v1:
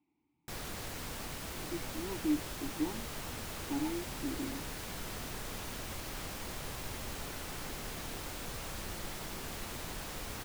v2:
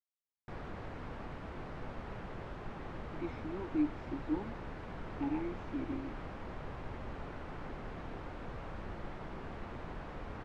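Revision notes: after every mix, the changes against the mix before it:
speech: entry +1.50 s
background: add low-pass filter 1,500 Hz 12 dB per octave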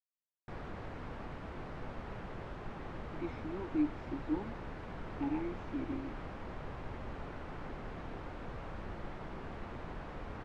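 nothing changed

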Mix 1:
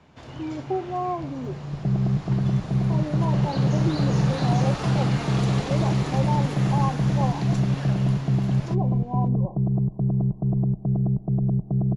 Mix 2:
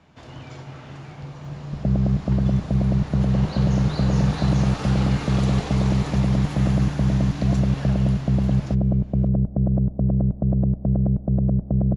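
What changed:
speech: muted
second sound: remove phaser with its sweep stopped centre 360 Hz, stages 8

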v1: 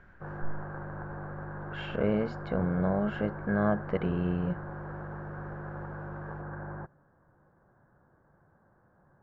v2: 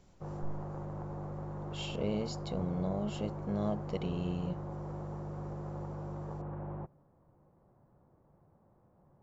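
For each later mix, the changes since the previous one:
speech −6.0 dB
master: remove low-pass with resonance 1,600 Hz, resonance Q 11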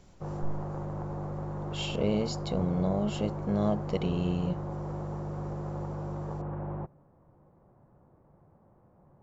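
speech +6.0 dB
background +5.0 dB

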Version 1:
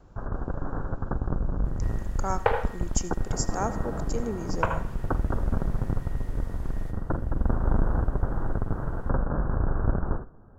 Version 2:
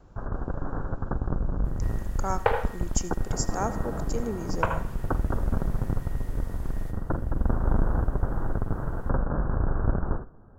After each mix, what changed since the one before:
second sound: add high-shelf EQ 9,600 Hz +9.5 dB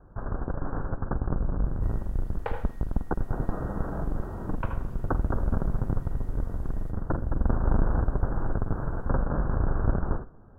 speech: muted
second sound −10.5 dB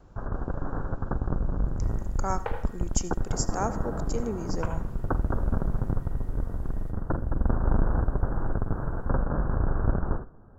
speech: unmuted

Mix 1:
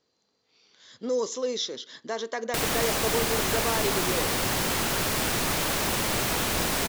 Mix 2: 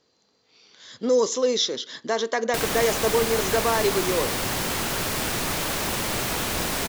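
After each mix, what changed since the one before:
speech +7.0 dB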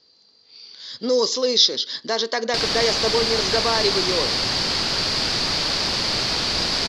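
master: add low-pass with resonance 4,700 Hz, resonance Q 6.8

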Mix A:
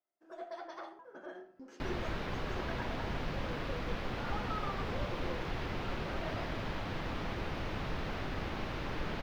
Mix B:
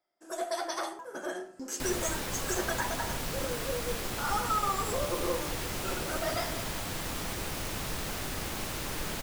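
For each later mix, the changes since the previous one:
first sound +9.5 dB
master: remove high-frequency loss of the air 290 metres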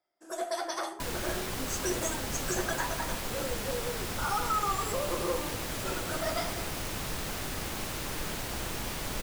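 second sound: entry −0.80 s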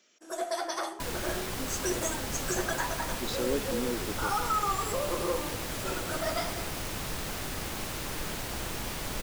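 speech: unmuted
reverb: on, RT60 0.65 s

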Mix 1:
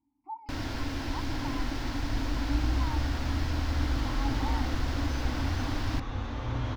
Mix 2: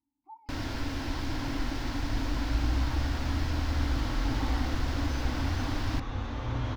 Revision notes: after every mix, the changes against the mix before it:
speech −9.0 dB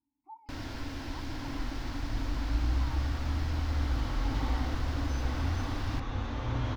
first sound −5.0 dB

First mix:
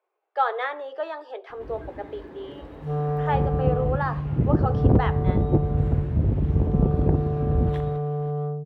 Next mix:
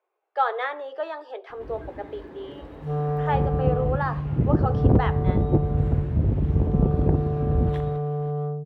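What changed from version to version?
nothing changed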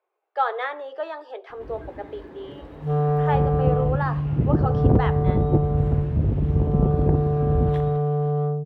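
second sound +4.5 dB

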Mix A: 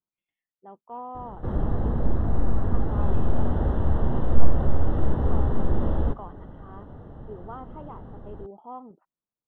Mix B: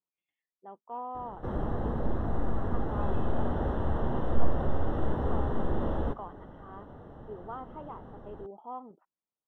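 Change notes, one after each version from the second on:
master: add low-shelf EQ 220 Hz −9 dB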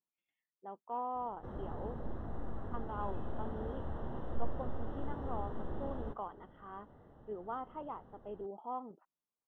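background −11.5 dB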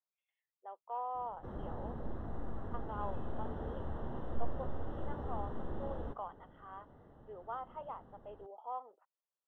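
speech: add Chebyshev high-pass filter 530 Hz, order 3

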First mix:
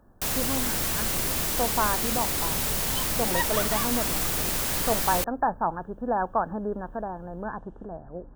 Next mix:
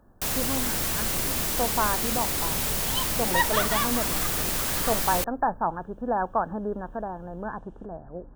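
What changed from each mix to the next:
second sound +5.5 dB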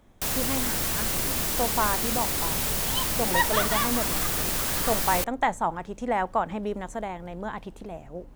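speech: remove linear-phase brick-wall low-pass 1,800 Hz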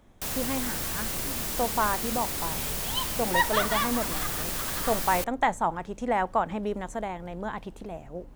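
first sound −4.5 dB

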